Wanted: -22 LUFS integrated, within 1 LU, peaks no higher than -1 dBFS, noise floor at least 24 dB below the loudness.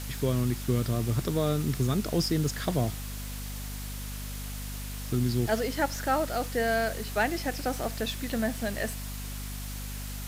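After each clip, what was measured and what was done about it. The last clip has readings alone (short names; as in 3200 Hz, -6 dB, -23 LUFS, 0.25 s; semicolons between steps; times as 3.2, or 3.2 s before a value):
hum 50 Hz; harmonics up to 250 Hz; hum level -35 dBFS; noise floor -37 dBFS; noise floor target -55 dBFS; loudness -30.5 LUFS; peak -14.0 dBFS; loudness target -22.0 LUFS
-> de-hum 50 Hz, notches 5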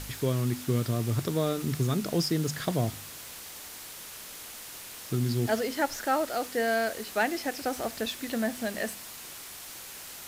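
hum none; noise floor -44 dBFS; noise floor target -55 dBFS
-> denoiser 11 dB, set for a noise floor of -44 dBFS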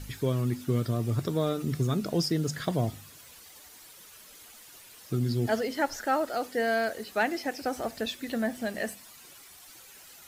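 noise floor -51 dBFS; noise floor target -54 dBFS
-> denoiser 6 dB, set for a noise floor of -51 dBFS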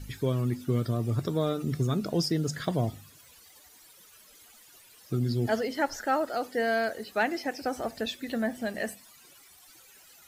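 noise floor -56 dBFS; loudness -30.0 LUFS; peak -15.0 dBFS; loudness target -22.0 LUFS
-> gain +8 dB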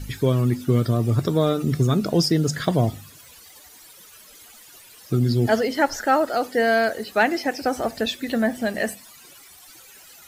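loudness -22.0 LUFS; peak -7.0 dBFS; noise floor -48 dBFS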